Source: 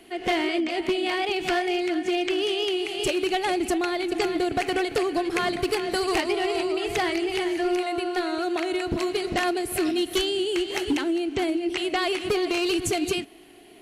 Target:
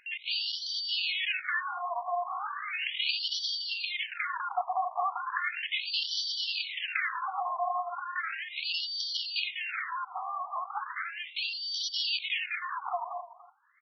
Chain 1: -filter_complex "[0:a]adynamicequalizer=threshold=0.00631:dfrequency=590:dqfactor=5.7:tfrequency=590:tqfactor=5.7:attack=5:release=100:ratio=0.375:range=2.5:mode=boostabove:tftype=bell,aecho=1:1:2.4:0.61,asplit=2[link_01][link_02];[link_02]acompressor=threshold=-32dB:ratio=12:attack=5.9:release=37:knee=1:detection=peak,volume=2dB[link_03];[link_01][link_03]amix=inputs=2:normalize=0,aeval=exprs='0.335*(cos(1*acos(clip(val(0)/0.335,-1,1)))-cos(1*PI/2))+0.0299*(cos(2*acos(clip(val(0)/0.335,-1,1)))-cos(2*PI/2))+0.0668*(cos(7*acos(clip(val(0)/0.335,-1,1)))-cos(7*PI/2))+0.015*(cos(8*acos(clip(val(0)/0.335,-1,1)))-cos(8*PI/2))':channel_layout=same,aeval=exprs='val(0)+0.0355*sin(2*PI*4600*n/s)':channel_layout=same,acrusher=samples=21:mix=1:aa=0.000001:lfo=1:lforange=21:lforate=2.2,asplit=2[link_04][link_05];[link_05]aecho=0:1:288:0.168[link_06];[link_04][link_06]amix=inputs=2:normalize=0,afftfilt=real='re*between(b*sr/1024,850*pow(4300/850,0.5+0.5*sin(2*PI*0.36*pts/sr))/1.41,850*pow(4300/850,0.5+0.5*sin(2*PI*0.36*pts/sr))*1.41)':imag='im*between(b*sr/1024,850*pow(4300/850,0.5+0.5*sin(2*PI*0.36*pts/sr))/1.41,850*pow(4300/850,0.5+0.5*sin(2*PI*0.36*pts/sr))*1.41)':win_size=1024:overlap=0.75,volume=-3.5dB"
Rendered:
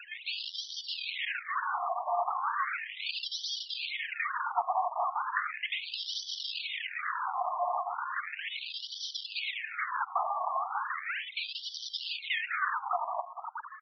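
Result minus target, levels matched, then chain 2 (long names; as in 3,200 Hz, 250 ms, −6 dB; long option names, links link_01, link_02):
sample-and-hold swept by an LFO: distortion +10 dB
-filter_complex "[0:a]adynamicequalizer=threshold=0.00631:dfrequency=590:dqfactor=5.7:tfrequency=590:tqfactor=5.7:attack=5:release=100:ratio=0.375:range=2.5:mode=boostabove:tftype=bell,aecho=1:1:2.4:0.61,asplit=2[link_01][link_02];[link_02]acompressor=threshold=-32dB:ratio=12:attack=5.9:release=37:knee=1:detection=peak,volume=2dB[link_03];[link_01][link_03]amix=inputs=2:normalize=0,aeval=exprs='0.335*(cos(1*acos(clip(val(0)/0.335,-1,1)))-cos(1*PI/2))+0.0299*(cos(2*acos(clip(val(0)/0.335,-1,1)))-cos(2*PI/2))+0.0668*(cos(7*acos(clip(val(0)/0.335,-1,1)))-cos(7*PI/2))+0.015*(cos(8*acos(clip(val(0)/0.335,-1,1)))-cos(8*PI/2))':channel_layout=same,aeval=exprs='val(0)+0.0355*sin(2*PI*4600*n/s)':channel_layout=same,acrusher=samples=4:mix=1:aa=0.000001:lfo=1:lforange=4:lforate=2.2,asplit=2[link_04][link_05];[link_05]aecho=0:1:288:0.168[link_06];[link_04][link_06]amix=inputs=2:normalize=0,afftfilt=real='re*between(b*sr/1024,850*pow(4300/850,0.5+0.5*sin(2*PI*0.36*pts/sr))/1.41,850*pow(4300/850,0.5+0.5*sin(2*PI*0.36*pts/sr))*1.41)':imag='im*between(b*sr/1024,850*pow(4300/850,0.5+0.5*sin(2*PI*0.36*pts/sr))/1.41,850*pow(4300/850,0.5+0.5*sin(2*PI*0.36*pts/sr))*1.41)':win_size=1024:overlap=0.75,volume=-3.5dB"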